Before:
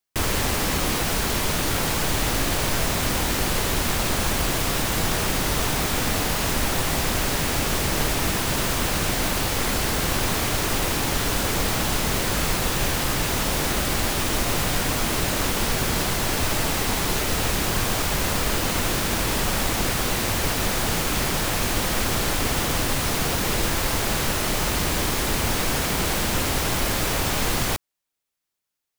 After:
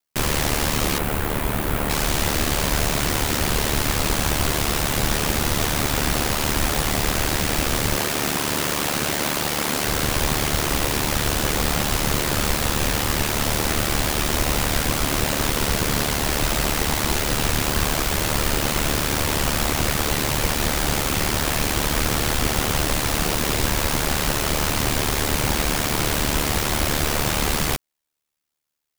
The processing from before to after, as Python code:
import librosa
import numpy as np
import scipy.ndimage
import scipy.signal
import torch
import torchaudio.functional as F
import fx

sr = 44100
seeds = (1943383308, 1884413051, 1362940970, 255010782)

y = fx.peak_eq(x, sr, hz=5500.0, db=-13.0, octaves=1.6, at=(0.98, 1.9))
y = fx.highpass(y, sr, hz=140.0, slope=12, at=(7.96, 9.87))
y = y * np.sin(2.0 * np.pi * 37.0 * np.arange(len(y)) / sr)
y = F.gain(torch.from_numpy(y), 4.5).numpy()